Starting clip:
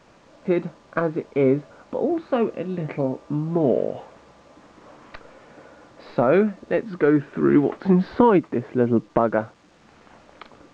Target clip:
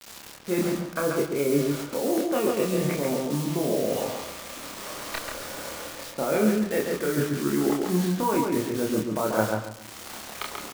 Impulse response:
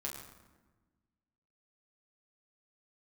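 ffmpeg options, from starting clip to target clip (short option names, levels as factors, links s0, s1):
-filter_complex "[0:a]lowshelf=f=120:g=-8,areverse,acompressor=threshold=0.0355:ratio=12,areverse,acrusher=bits=7:mix=0:aa=0.000001,highshelf=f=3200:g=10.5,asplit=2[s0][s1];[s1]adelay=28,volume=0.75[s2];[s0][s2]amix=inputs=2:normalize=0,asplit=2[s3][s4];[s4]adelay=137,lowpass=f=2800:p=1,volume=0.708,asplit=2[s5][s6];[s6]adelay=137,lowpass=f=2800:p=1,volume=0.27,asplit=2[s7][s8];[s8]adelay=137,lowpass=f=2800:p=1,volume=0.27,asplit=2[s9][s10];[s10]adelay=137,lowpass=f=2800:p=1,volume=0.27[s11];[s3][s5][s7][s9][s11]amix=inputs=5:normalize=0,asplit=2[s12][s13];[1:a]atrim=start_sample=2205[s14];[s13][s14]afir=irnorm=-1:irlink=0,volume=0.282[s15];[s12][s15]amix=inputs=2:normalize=0,volume=1.41"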